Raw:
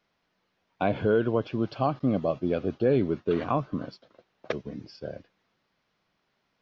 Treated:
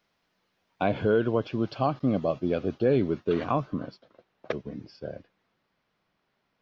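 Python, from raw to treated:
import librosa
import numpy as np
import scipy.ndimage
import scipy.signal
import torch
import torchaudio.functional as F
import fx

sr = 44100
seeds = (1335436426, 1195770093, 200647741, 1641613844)

y = fx.high_shelf(x, sr, hz=4100.0, db=fx.steps((0.0, 4.0), (3.72, -6.5)))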